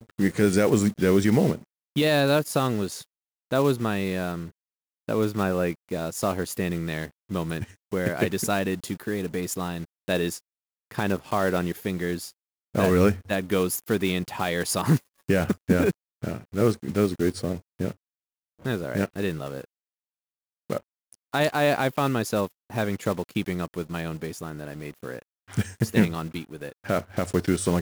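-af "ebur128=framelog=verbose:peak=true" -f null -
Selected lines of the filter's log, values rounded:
Integrated loudness:
  I:         -26.2 LUFS
  Threshold: -36.6 LUFS
Loudness range:
  LRA:         6.0 LU
  Threshold: -47.2 LUFS
  LRA low:   -30.2 LUFS
  LRA high:  -24.2 LUFS
True peak:
  Peak:       -6.1 dBFS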